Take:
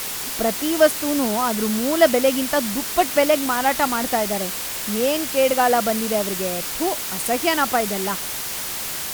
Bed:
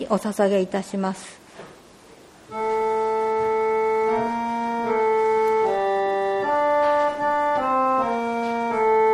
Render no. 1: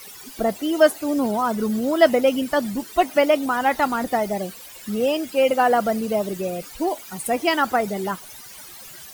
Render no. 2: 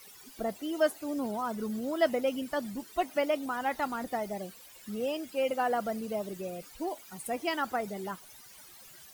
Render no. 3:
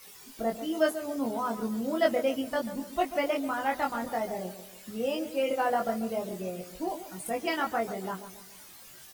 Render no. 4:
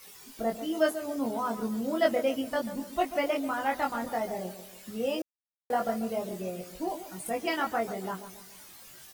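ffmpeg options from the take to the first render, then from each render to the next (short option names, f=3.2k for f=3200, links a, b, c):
-af "afftdn=nr=17:nf=-28"
-af "volume=-11.5dB"
-filter_complex "[0:a]asplit=2[a][b];[b]adelay=22,volume=-2.5dB[c];[a][c]amix=inputs=2:normalize=0,asplit=2[d][e];[e]adelay=140,lowpass=f=1.4k:p=1,volume=-11dB,asplit=2[f][g];[g]adelay=140,lowpass=f=1.4k:p=1,volume=0.47,asplit=2[h][i];[i]adelay=140,lowpass=f=1.4k:p=1,volume=0.47,asplit=2[j][k];[k]adelay=140,lowpass=f=1.4k:p=1,volume=0.47,asplit=2[l][m];[m]adelay=140,lowpass=f=1.4k:p=1,volume=0.47[n];[d][f][h][j][l][n]amix=inputs=6:normalize=0"
-filter_complex "[0:a]asplit=3[a][b][c];[a]atrim=end=5.22,asetpts=PTS-STARTPTS,afade=t=out:st=5.216:d=0.004:c=hsin[d];[b]atrim=start=5.22:end=5.7,asetpts=PTS-STARTPTS,volume=0[e];[c]atrim=start=5.7,asetpts=PTS-STARTPTS,afade=t=in:d=0.004:c=hsin[f];[d][e][f]concat=n=3:v=0:a=1"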